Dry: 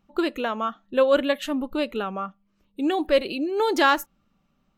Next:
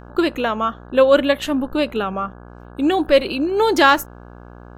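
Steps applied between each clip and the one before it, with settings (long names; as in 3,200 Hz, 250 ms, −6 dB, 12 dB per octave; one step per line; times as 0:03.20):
hum with harmonics 60 Hz, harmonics 28, −46 dBFS −4 dB per octave
level +6 dB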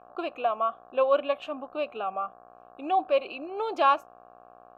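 formant filter a
level +1.5 dB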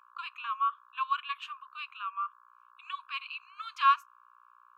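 linear-phase brick-wall high-pass 940 Hz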